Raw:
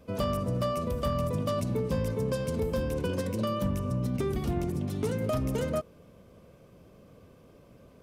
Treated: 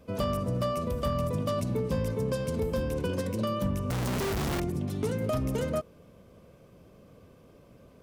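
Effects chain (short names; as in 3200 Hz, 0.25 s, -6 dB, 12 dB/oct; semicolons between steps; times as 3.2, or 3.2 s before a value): 3.9–4.6 infinite clipping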